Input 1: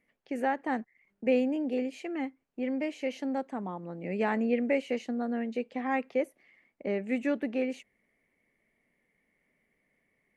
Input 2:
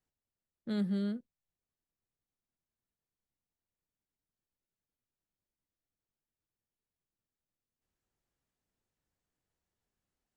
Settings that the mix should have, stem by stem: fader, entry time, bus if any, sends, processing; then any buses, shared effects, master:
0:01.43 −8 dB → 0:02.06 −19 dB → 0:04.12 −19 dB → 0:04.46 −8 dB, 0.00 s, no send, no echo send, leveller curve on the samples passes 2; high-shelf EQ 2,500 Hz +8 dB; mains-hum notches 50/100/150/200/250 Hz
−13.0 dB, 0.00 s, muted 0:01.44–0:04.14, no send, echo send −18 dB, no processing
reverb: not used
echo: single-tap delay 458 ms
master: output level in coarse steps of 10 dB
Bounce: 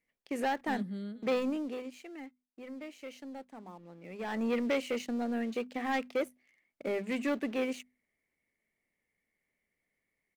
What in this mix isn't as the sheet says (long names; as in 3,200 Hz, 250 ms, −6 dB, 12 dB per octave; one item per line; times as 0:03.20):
stem 2 −13.0 dB → −6.5 dB
master: missing output level in coarse steps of 10 dB